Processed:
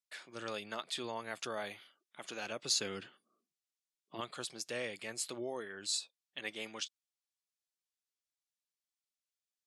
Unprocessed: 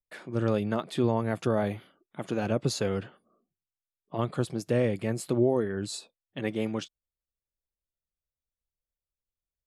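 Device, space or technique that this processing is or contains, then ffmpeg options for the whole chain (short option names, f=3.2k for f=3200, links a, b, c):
piezo pickup straight into a mixer: -filter_complex "[0:a]asettb=1/sr,asplit=3[a][b][c];[a]atrim=end=2.724[d];[b]atrim=start=2.72:end=4.21,asetpts=PTS-STARTPTS,afade=t=in:d=0.004:c=qsin,afade=t=out:st=1.486:d=0.004:c=qsin,lowshelf=f=430:t=q:w=1.5:g=7[e];[c]atrim=start=4.206[f];[d][e]acrossfade=d=0.004:c1=hsin:c2=qsin[g];[g][f]acrossfade=d=0.004:c1=qsin:c2=hsin,lowpass=5.9k,aderivative,volume=8.5dB"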